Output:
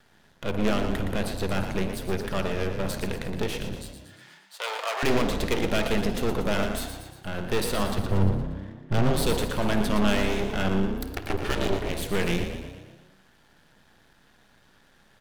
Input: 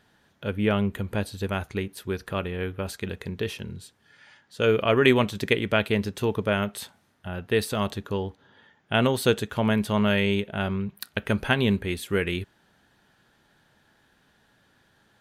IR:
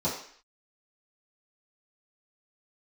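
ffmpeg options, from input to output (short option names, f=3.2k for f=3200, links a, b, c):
-filter_complex "[0:a]asettb=1/sr,asplit=3[a][b][c];[a]atrim=end=7.984[d];[b]atrim=start=7.98:end=9.11,asetpts=PTS-STARTPTS,afade=t=in:d=0.004:c=qsin,afade=t=out:st=1.126:d=0.004:c=qsin,aemphasis=mode=reproduction:type=riaa[e];[c]atrim=start=9.106[f];[d][e]acrossfade=d=0.004:c1=hsin:c2=qsin[g];[g][f]acrossfade=d=0.004:c1=qsin:c2=hsin,asplit=3[h][i][j];[h]afade=t=out:st=10.91:d=0.02[k];[i]aeval=exprs='val(0)*sin(2*PI*190*n/s)':c=same,afade=t=in:st=10.91:d=0.02,afade=t=out:st=11.92:d=0.02[l];[j]afade=t=in:st=11.92:d=0.02[m];[k][l][m]amix=inputs=3:normalize=0,asoftclip=type=tanh:threshold=-22dB,asplit=2[n][o];[1:a]atrim=start_sample=2205,adelay=51[p];[o][p]afir=irnorm=-1:irlink=0,volume=-20dB[q];[n][q]amix=inputs=2:normalize=0,aeval=exprs='max(val(0),0)':c=same,asettb=1/sr,asplit=3[r][s][t];[r]atrim=end=3.754[u];[s]atrim=start=3.75:end=5.03,asetpts=PTS-STARTPTS,afade=t=in:d=0.004:c=qsin,afade=t=out:st=1.276:d=0.004:c=qsin,highpass=f=680:w=0.5412,highpass=f=680:w=1.3066[v];[t]atrim=start=5.026[w];[u][v]acrossfade=d=0.004:c1=hsin:c2=qsin[x];[x][w]acrossfade=d=0.004:c1=qsin:c2=hsin,asplit=7[y][z][aa][ab][ac][ad][ae];[z]adelay=117,afreqshift=32,volume=-8.5dB[af];[aa]adelay=234,afreqshift=64,volume=-13.9dB[ag];[ab]adelay=351,afreqshift=96,volume=-19.2dB[ah];[ac]adelay=468,afreqshift=128,volume=-24.6dB[ai];[ad]adelay=585,afreqshift=160,volume=-29.9dB[aj];[ae]adelay=702,afreqshift=192,volume=-35.3dB[ak];[y][af][ag][ah][ai][aj][ak]amix=inputs=7:normalize=0,volume=6dB"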